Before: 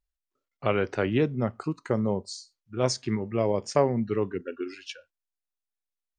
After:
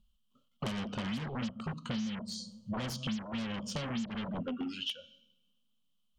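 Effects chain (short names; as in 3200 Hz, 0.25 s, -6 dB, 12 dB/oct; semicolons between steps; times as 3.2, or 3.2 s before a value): EQ curve 110 Hz 0 dB, 230 Hz +14 dB, 340 Hz -24 dB, 530 Hz -6 dB, 820 Hz -13 dB, 1200 Hz -4 dB, 1900 Hz -27 dB, 3000 Hz -1 dB, 5200 Hz -11 dB; two-slope reverb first 0.6 s, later 1.7 s, from -23 dB, DRR 19 dB; in parallel at -6 dB: sine folder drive 15 dB, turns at -20.5 dBFS; on the sum: bell 3100 Hz +9.5 dB 0.21 oct; compressor 10:1, threshold -34 dBFS, peak gain reduction 22 dB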